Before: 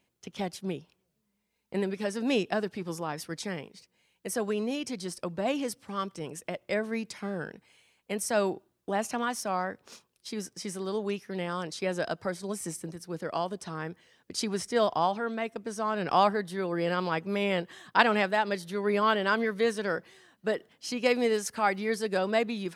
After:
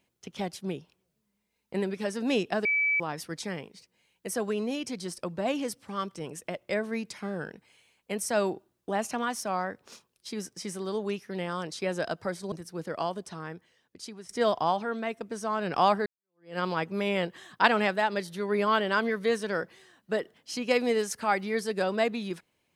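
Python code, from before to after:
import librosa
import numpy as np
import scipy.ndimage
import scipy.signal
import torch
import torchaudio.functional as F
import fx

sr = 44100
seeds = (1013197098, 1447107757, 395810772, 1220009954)

y = fx.edit(x, sr, fx.bleep(start_s=2.65, length_s=0.35, hz=2300.0, db=-22.5),
    fx.cut(start_s=12.52, length_s=0.35),
    fx.fade_out_to(start_s=13.38, length_s=1.26, floor_db=-17.0),
    fx.fade_in_span(start_s=16.41, length_s=0.53, curve='exp'), tone=tone)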